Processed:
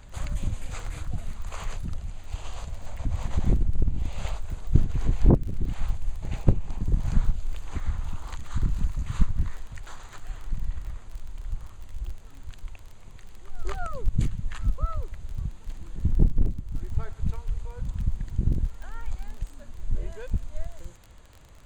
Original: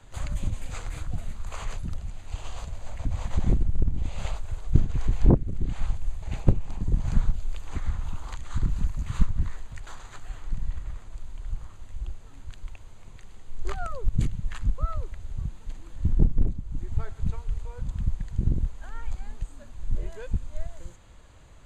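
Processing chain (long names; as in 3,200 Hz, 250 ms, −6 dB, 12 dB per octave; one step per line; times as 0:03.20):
echo ahead of the sound 238 ms −19 dB
surface crackle 24 per second −36 dBFS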